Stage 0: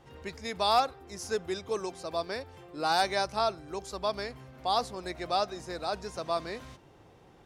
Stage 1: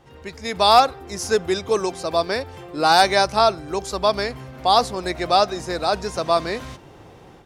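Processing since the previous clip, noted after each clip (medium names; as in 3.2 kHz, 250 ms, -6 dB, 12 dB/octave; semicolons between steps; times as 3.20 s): level rider gain up to 8 dB; trim +4 dB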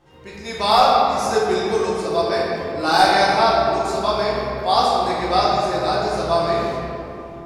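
reverberation RT60 2.8 s, pre-delay 6 ms, DRR -7 dB; trim -6.5 dB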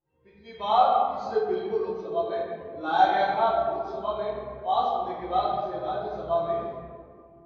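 knee-point frequency compression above 2.5 kHz 1.5:1; spectral contrast expander 1.5:1; trim -6 dB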